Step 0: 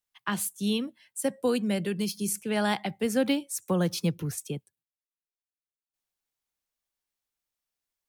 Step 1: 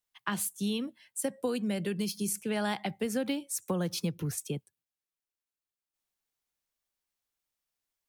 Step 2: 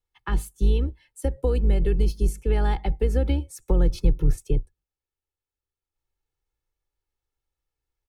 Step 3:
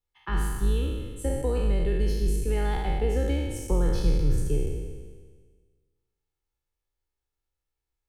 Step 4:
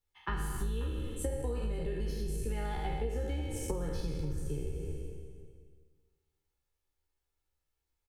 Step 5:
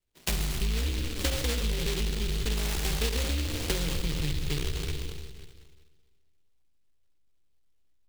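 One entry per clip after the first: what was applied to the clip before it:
downward compressor 5 to 1, threshold −28 dBFS, peak gain reduction 7.5 dB
sub-octave generator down 2 octaves, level −2 dB; spectral tilt −3 dB per octave; comb filter 2.3 ms, depth 64%
peak hold with a decay on every bin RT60 1.55 s; level −5 dB
double-tracking delay 13 ms −5 dB; downward compressor 10 to 1, threshold −31 dBFS, peak gain reduction 13.5 dB; slap from a distant wall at 92 metres, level −16 dB
in parallel at −5.5 dB: slack as between gear wheels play −44.5 dBFS; on the sum: decimation without filtering 18×; short delay modulated by noise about 3,100 Hz, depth 0.33 ms; level +2 dB

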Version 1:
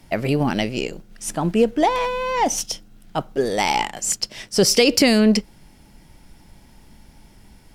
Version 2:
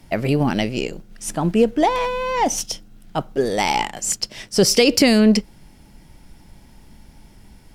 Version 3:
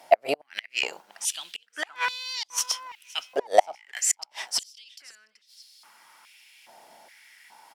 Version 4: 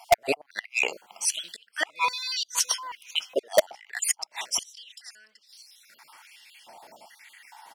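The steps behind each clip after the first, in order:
low-shelf EQ 330 Hz +2.5 dB
gate with flip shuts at −9 dBFS, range −36 dB; repeating echo 519 ms, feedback 32%, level −23 dB; high-pass on a step sequencer 2.4 Hz 680–4,300 Hz
time-frequency cells dropped at random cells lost 39%; in parallel at −4 dB: wrap-around overflow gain 11.5 dB

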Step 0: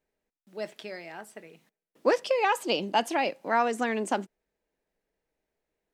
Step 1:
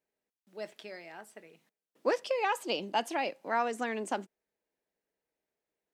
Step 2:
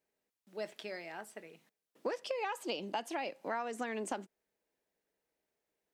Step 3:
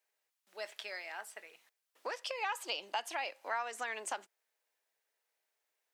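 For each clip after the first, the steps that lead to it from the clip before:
high-pass filter 170 Hz 6 dB per octave; level −5 dB
downward compressor 6 to 1, threshold −36 dBFS, peak gain reduction 12.5 dB; level +2 dB
high-pass filter 880 Hz 12 dB per octave; level +4 dB

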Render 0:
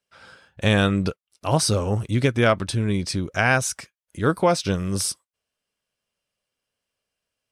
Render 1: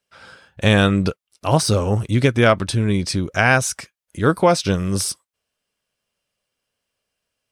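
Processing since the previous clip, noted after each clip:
de-essing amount 40%
level +4 dB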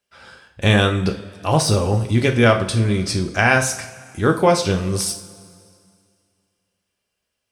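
coupled-rooms reverb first 0.42 s, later 2.3 s, from −18 dB, DRR 3.5 dB
level −1 dB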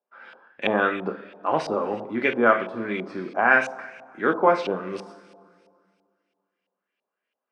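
high-pass filter 230 Hz 24 dB per octave
auto-filter low-pass saw up 3 Hz 740–2,800 Hz
level −5.5 dB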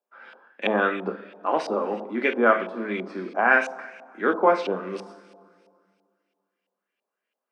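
elliptic high-pass filter 190 Hz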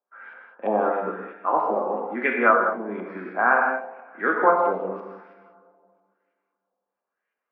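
auto-filter low-pass sine 1 Hz 780–1,900 Hz
reverb whose tail is shaped and stops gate 230 ms flat, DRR 1.5 dB
level −4 dB

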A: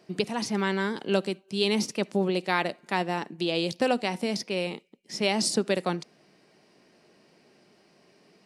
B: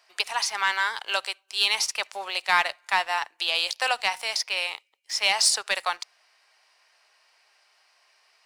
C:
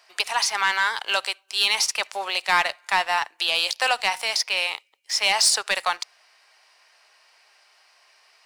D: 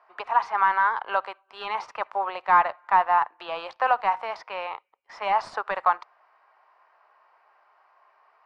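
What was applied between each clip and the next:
high-pass filter 870 Hz 24 dB per octave; leveller curve on the samples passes 1; level +4.5 dB
in parallel at −2 dB: brickwall limiter −17 dBFS, peak gain reduction 8.5 dB; on the sum: soft clipping −8 dBFS, distortion −22 dB
low-pass with resonance 1,100 Hz, resonance Q 2.3; level −1.5 dB

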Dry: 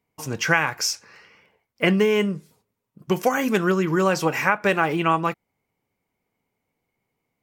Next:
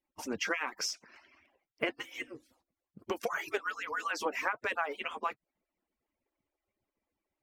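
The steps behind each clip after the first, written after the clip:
harmonic-percussive split with one part muted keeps percussive
high-shelf EQ 6,600 Hz −11.5 dB
downward compressor 2.5 to 1, threshold −29 dBFS, peak gain reduction 10 dB
level −3 dB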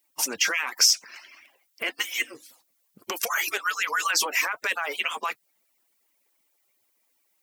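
brickwall limiter −27 dBFS, peak gain reduction 11.5 dB
spectral tilt +4.5 dB per octave
level +8.5 dB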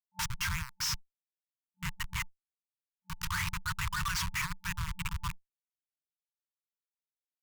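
comparator with hysteresis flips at −24 dBFS
tube saturation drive 35 dB, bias 0.25
brick-wall band-stop 190–880 Hz
level +4.5 dB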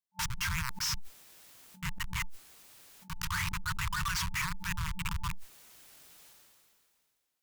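level that may fall only so fast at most 25 dB per second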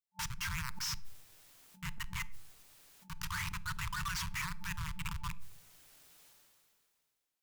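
convolution reverb RT60 0.70 s, pre-delay 7 ms, DRR 17 dB
level −5 dB

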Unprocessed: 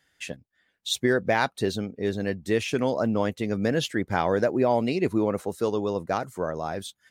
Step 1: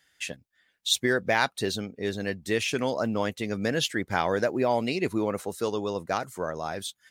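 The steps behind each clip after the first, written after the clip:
tilt shelving filter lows −4 dB, about 1,200 Hz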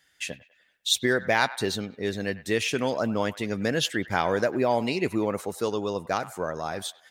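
delay with a band-pass on its return 99 ms, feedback 43%, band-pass 1,400 Hz, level −15.5 dB
level +1 dB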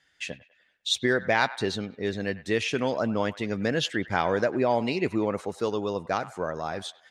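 high-frequency loss of the air 73 metres

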